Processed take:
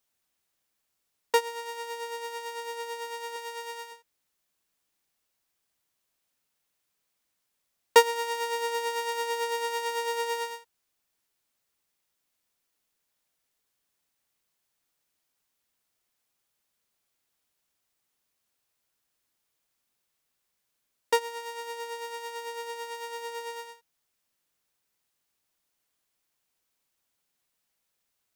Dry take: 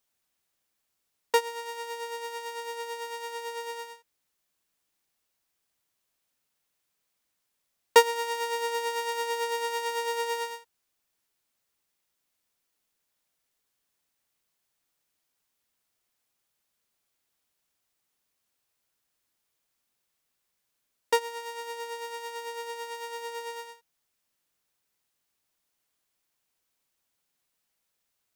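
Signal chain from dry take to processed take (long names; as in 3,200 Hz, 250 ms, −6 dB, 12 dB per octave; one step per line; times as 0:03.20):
0:03.36–0:03.92: low-shelf EQ 320 Hz −11.5 dB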